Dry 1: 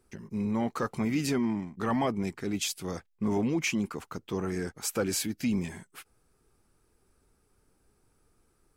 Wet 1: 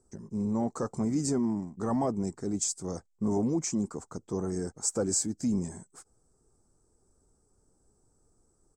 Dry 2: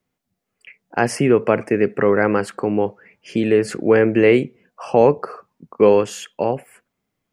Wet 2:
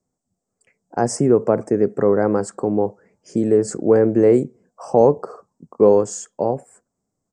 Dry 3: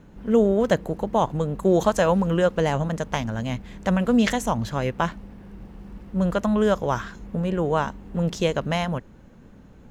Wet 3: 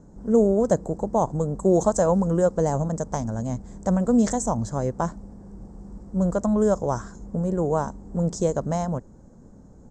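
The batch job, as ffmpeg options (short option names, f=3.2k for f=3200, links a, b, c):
-af "firequalizer=gain_entry='entry(720,0);entry(2700,-25);entry(5100,-2);entry(7900,9);entry(11000,-19)':delay=0.05:min_phase=1"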